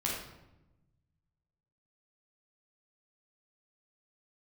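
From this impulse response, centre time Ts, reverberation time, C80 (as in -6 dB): 55 ms, 0.95 s, 4.5 dB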